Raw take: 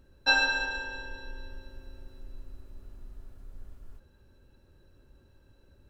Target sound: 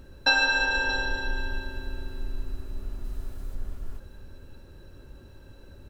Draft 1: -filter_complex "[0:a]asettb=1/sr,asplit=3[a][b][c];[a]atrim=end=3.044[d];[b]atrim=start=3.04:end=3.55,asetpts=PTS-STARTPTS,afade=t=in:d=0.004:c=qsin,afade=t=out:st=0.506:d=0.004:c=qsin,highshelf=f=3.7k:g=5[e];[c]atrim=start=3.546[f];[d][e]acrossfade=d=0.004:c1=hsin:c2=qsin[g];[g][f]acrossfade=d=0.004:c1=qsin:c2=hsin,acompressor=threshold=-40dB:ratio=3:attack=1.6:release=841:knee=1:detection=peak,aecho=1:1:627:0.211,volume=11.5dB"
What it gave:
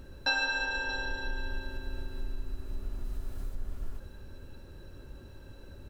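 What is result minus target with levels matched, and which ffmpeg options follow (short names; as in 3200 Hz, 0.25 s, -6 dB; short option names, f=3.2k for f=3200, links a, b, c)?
compressor: peak gain reduction +7.5 dB
-filter_complex "[0:a]asettb=1/sr,asplit=3[a][b][c];[a]atrim=end=3.044[d];[b]atrim=start=3.04:end=3.55,asetpts=PTS-STARTPTS,afade=t=in:d=0.004:c=qsin,afade=t=out:st=0.506:d=0.004:c=qsin,highshelf=f=3.7k:g=5[e];[c]atrim=start=3.546[f];[d][e]acrossfade=d=0.004:c1=hsin:c2=qsin[g];[g][f]acrossfade=d=0.004:c1=qsin:c2=hsin,acompressor=threshold=-29dB:ratio=3:attack=1.6:release=841:knee=1:detection=peak,aecho=1:1:627:0.211,volume=11.5dB"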